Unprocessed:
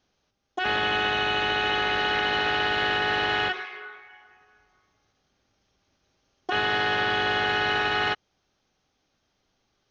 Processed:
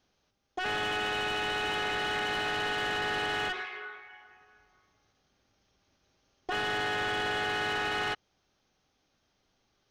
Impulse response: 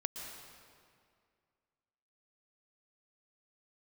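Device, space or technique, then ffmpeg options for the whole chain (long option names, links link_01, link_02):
saturation between pre-emphasis and de-emphasis: -af "highshelf=frequency=3700:gain=12,asoftclip=type=tanh:threshold=-25dB,highshelf=frequency=3700:gain=-12,volume=-1dB"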